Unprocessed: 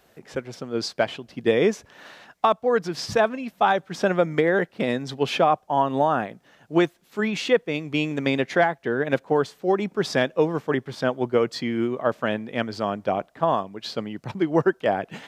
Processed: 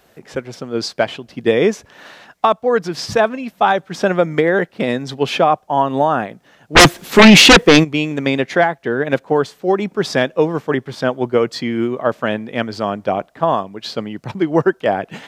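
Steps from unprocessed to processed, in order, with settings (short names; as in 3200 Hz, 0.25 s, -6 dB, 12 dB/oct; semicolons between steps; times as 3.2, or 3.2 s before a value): 6.75–7.83 sine folder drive 18 dB -> 13 dB, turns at -7 dBFS; gain +5.5 dB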